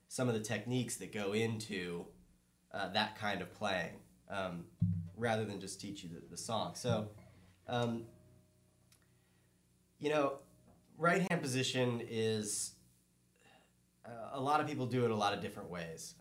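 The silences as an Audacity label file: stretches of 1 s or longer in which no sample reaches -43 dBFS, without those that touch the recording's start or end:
8.050000	10.020000	silence
12.690000	14.060000	silence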